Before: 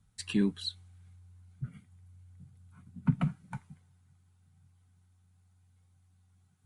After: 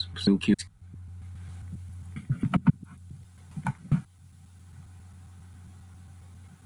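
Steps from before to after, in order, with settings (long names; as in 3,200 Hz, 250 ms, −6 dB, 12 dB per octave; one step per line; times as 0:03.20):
slices reordered back to front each 135 ms, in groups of 6
multiband upward and downward compressor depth 40%
level +9 dB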